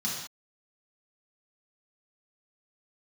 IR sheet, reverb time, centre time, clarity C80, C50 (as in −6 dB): non-exponential decay, 54 ms, 4.5 dB, 1.5 dB